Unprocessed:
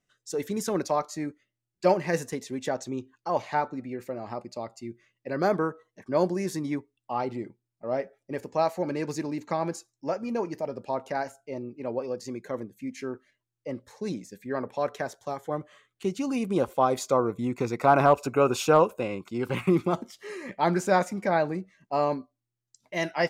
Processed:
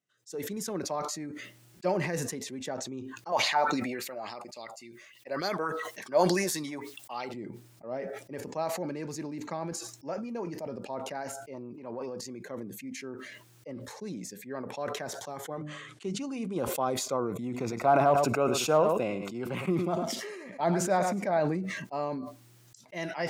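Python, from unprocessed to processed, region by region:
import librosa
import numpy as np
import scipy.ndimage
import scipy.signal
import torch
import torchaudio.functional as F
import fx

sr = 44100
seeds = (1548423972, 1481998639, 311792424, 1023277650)

y = fx.chain(x, sr, fx.tilt_eq(slope=3.0),
    fx.bell_lfo(hz=3.5, low_hz=590.0, high_hz=4500.0, db=12), at=(3.32, 7.34))
y = fx.chain(y, sr, fx.transient(attack_db=-5, sustain_db=9),
    fx.peak_eq(hz=1000.0, db=9.0, octaves=0.41), at=(11.54, 12.21))
y = fx.chain(y, sr, fx.lowpass(hz=9600.0, slope=24),
    fx.hum_notches(base_hz=50, count=6), at=(15.52, 16.57))
y = fx.chain(y, sr, fx.peak_eq(hz=660.0, db=8.5, octaves=0.29),
    fx.echo_single(ms=105, db=-13.5), at=(17.34, 21.4))
y = scipy.signal.sosfilt(scipy.signal.butter(2, 120.0, 'highpass', fs=sr, output='sos'), y)
y = fx.dynamic_eq(y, sr, hz=160.0, q=1.2, threshold_db=-43.0, ratio=4.0, max_db=3)
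y = fx.sustainer(y, sr, db_per_s=34.0)
y = F.gain(torch.from_numpy(y), -8.0).numpy()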